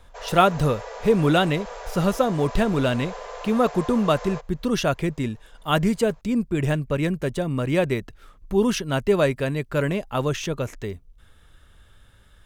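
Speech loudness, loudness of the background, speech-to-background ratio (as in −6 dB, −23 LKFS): −23.5 LKFS, −37.0 LKFS, 13.5 dB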